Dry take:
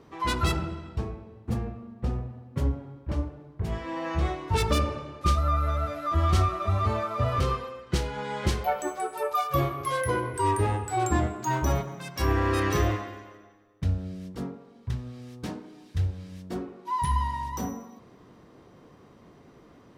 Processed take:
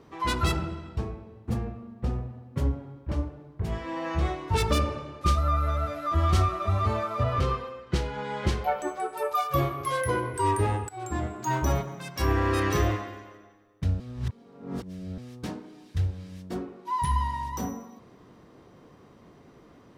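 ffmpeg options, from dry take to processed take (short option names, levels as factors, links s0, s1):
-filter_complex "[0:a]asettb=1/sr,asplit=3[s0][s1][s2];[s0]atrim=end=7.234[s3];[s1]atrim=start=7.23:end=9.17,asetpts=PTS-STARTPTS,afade=t=in:d=0.004:c=qsin,afade=t=out:st=1.936:d=0.004:c=qsin,highshelf=f=7000:g=-10[s4];[s2]atrim=start=9.166[s5];[s3][s4]acrossfade=d=0.004:c1=hsin:c2=qsin[s6];[s6][s5]acrossfade=d=0.004:c1=qsin:c2=hsin,asplit=4[s7][s8][s9][s10];[s7]atrim=end=10.89,asetpts=PTS-STARTPTS,afade=t=out:st=10.886:d=0.004:c=hsin:silence=0.11885[s11];[s8]atrim=start=10.89:end=14.002,asetpts=PTS-STARTPTS,afade=t=in:d=0.63:silence=0.11885[s12];[s9]atrim=start=13.998:end=15.182,asetpts=PTS-STARTPTS,areverse[s13];[s10]atrim=start=15.178[s14];[s11][s12]concat=n=2:v=0:a=1[s15];[s15][s13]acrossfade=d=0.004:c1=hsin:c2=hsin[s16];[s16][s14]acrossfade=d=0.004:c1=hsin:c2=hsin"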